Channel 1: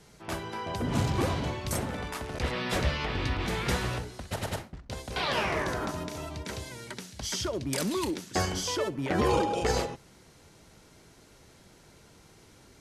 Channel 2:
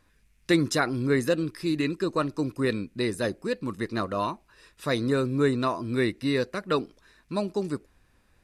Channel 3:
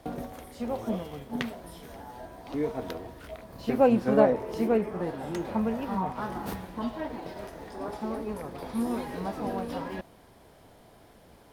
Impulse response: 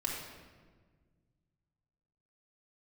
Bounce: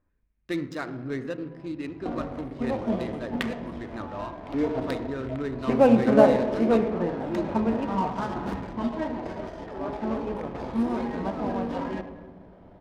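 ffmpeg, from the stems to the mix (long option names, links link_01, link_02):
-filter_complex "[0:a]lowpass=7600,adelay=900,volume=-14.5dB[link_01];[1:a]volume=-11.5dB,asplit=3[link_02][link_03][link_04];[link_03]volume=-7dB[link_05];[2:a]adelay=2000,volume=-0.5dB,asplit=2[link_06][link_07];[link_07]volume=-5dB[link_08];[link_04]apad=whole_len=604604[link_09];[link_01][link_09]sidechaincompress=threshold=-43dB:ratio=8:attack=16:release=439[link_10];[3:a]atrim=start_sample=2205[link_11];[link_05][link_08]amix=inputs=2:normalize=0[link_12];[link_12][link_11]afir=irnorm=-1:irlink=0[link_13];[link_10][link_02][link_06][link_13]amix=inputs=4:normalize=0,adynamicsmooth=sensitivity=6.5:basefreq=1300"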